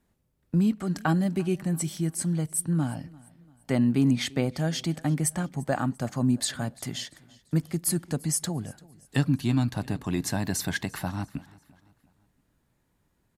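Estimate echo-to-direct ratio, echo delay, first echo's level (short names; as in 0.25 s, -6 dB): -22.0 dB, 0.343 s, -23.0 dB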